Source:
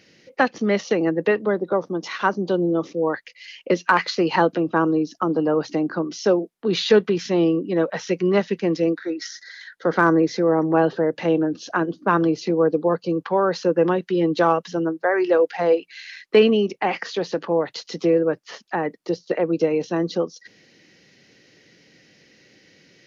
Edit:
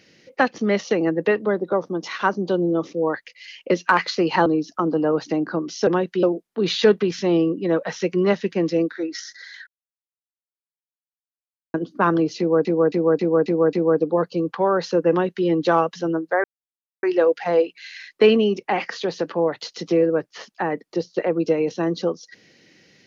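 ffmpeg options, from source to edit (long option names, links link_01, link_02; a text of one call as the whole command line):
ffmpeg -i in.wav -filter_complex "[0:a]asplit=12[link_01][link_02][link_03][link_04][link_05][link_06][link_07][link_08][link_09][link_10][link_11][link_12];[link_01]atrim=end=4.462[link_13];[link_02]atrim=start=4.888:end=6.302[link_14];[link_03]atrim=start=13.818:end=14.182[link_15];[link_04]atrim=start=6.298:end=9.74,asetpts=PTS-STARTPTS,afade=type=out:start_time=3.438:duration=0.004:curve=hsin[link_16];[link_05]atrim=start=9.74:end=11.81,asetpts=PTS-STARTPTS,volume=0[link_17];[link_06]atrim=start=11.81:end=12.722,asetpts=PTS-STARTPTS,afade=type=in:duration=0.004:curve=hsin[link_18];[link_07]atrim=start=12.448:end=12.722[link_19];[link_08]atrim=start=12.448:end=12.722[link_20];[link_09]atrim=start=12.448:end=12.722[link_21];[link_10]atrim=start=12.448:end=12.722[link_22];[link_11]atrim=start=12.448:end=15.16,asetpts=PTS-STARTPTS,afade=type=out:start_time=2.708:duration=0.004:curve=hsin,apad=pad_dur=0.59[link_23];[link_12]atrim=start=15.16,asetpts=PTS-STARTPTS,afade=type=in:duration=0.004:curve=hsin[link_24];[link_13][link_14]acrossfade=duration=0.004:curve1=hsin:curve2=hsin[link_25];[link_25][link_15]acrossfade=duration=0.004:curve1=hsin:curve2=hsin[link_26];[link_16][link_17][link_18]concat=n=3:v=0:a=1[link_27];[link_26][link_27]acrossfade=duration=0.004:curve1=hsin:curve2=hsin[link_28];[link_28][link_19]acrossfade=duration=0.004:curve1=hsin:curve2=hsin[link_29];[link_29][link_20]acrossfade=duration=0.004:curve1=hsin:curve2=hsin[link_30];[link_30][link_21]acrossfade=duration=0.004:curve1=hsin:curve2=hsin[link_31];[link_31][link_22]acrossfade=duration=0.004:curve1=hsin:curve2=hsin[link_32];[link_23][link_24]concat=n=2:v=0:a=1[link_33];[link_32][link_33]acrossfade=duration=0.004:curve1=hsin:curve2=hsin" out.wav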